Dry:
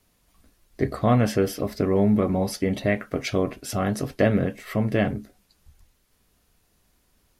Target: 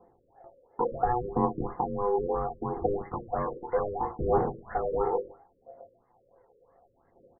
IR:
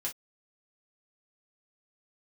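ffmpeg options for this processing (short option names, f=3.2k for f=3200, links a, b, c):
-filter_complex "[0:a]highpass=82,tiltshelf=f=640:g=7.5,alimiter=limit=-16.5dB:level=0:latency=1:release=245,asettb=1/sr,asplit=3[a][b][c];[a]atrim=end=2.864[d];[b]atrim=start=2.86:end=4.97,asetpts=PTS-STARTPTS,afade=t=in:d=0.004:c=qsin,afade=t=out:st=2.106:d=0.004:c=qsin,asoftclip=type=hard:threshold=-28dB[e];[c]atrim=start=4.966[f];[d][e]acrossfade=d=0.004:c1=hsin:c2=qsin[g];[g][f]acrossfade=d=0.004:c1=qsin:c2=hsin,acompressor=threshold=-27dB:ratio=6,aeval=exprs='val(0)*sin(2*PI*610*n/s)':c=same,aphaser=in_gain=1:out_gain=1:delay=2.4:decay=0.62:speed=0.69:type=triangular,asplit=2[h][i];[i]adelay=120,highpass=300,lowpass=3.4k,asoftclip=type=hard:threshold=-35dB,volume=-17dB[j];[h][j]amix=inputs=2:normalize=0,asplit=2[k][l];[1:a]atrim=start_sample=2205,asetrate=29988,aresample=44100[m];[l][m]afir=irnorm=-1:irlink=0,volume=-5dB[n];[k][n]amix=inputs=2:normalize=0,afftfilt=real='re*lt(b*sr/1024,570*pow(2200/570,0.5+0.5*sin(2*PI*3*pts/sr)))':imag='im*lt(b*sr/1024,570*pow(2200/570,0.5+0.5*sin(2*PI*3*pts/sr)))':win_size=1024:overlap=0.75"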